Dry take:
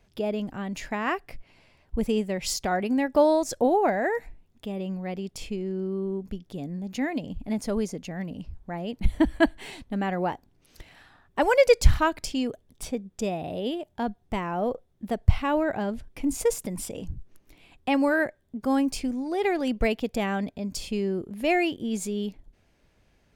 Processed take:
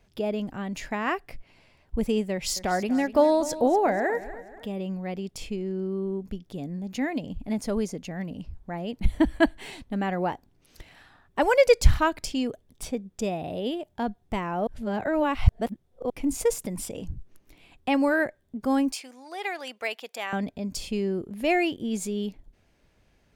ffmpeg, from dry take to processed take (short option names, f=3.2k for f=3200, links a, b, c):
-filter_complex "[0:a]asettb=1/sr,asplit=3[a][b][c];[a]atrim=end=2.324[d];[b]atrim=start=2.32:end=4.67,asetpts=PTS-STARTPTS,afade=t=in:d=0.004:c=qsin,afade=t=out:st=2.346:d=0.004:c=qsin,aecho=1:1:242|484|726|968:0.178|0.0747|0.0314|0.0132,atrim=end_sample=103635[e];[c]atrim=start=4.666[f];[d][e]acrossfade=d=0.004:c1=hsin:c2=qsin[g];[g][f]acrossfade=d=0.004:c1=qsin:c2=hsin,asettb=1/sr,asplit=3[h][i][j];[h]atrim=end=18.924[k];[i]atrim=start=18.92:end=20.33,asetpts=PTS-STARTPTS,afade=t=in:d=0.004:c=qsin,afade=t=out:st=1.406:d=0.004:c=qsin,highpass=840[l];[j]atrim=start=20.326[m];[k][l]acrossfade=d=0.004:c1=hsin:c2=qsin[n];[n][m]acrossfade=d=0.004:c1=qsin:c2=hsin,asplit=3[o][p][q];[o]atrim=end=14.672[r];[p]atrim=start=14.668:end=16.102,asetpts=PTS-STARTPTS,areverse[s];[q]atrim=start=16.098[t];[r][s]acrossfade=d=0.004:c1=hsin:c2=hsin[u];[u][t]acrossfade=d=0.004:c1=hsin:c2=hsin"